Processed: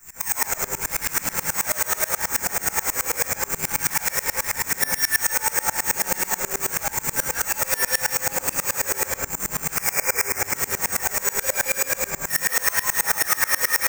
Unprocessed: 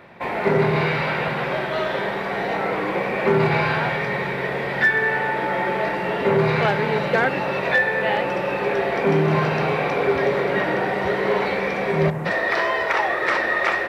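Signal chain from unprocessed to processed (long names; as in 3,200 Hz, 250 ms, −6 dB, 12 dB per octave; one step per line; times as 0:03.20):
sub-octave generator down 2 octaves, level +4 dB
0:05.83–0:06.59: comb filter 5.4 ms, depth 88%
0:11.24–0:12.11: hollow resonant body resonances 560/1,600/2,400/3,500 Hz, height 16 dB
downward compressor, threshold −18 dBFS, peak gain reduction 10.5 dB
phase shifter 0.85 Hz, delay 2.3 ms, feedback 47%
hard clipping −24.5 dBFS, distortion −7 dB
0:09.76–0:10.39: high shelf with overshoot 2,800 Hz −7.5 dB, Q 3
background noise brown −37 dBFS
parametric band 1,300 Hz +14 dB 2.9 octaves
bad sample-rate conversion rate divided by 6×, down none, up zero stuff
convolution reverb RT60 0.45 s, pre-delay 149 ms, DRR −2.5 dB
tremolo with a ramp in dB swelling 9.3 Hz, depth 26 dB
level −8.5 dB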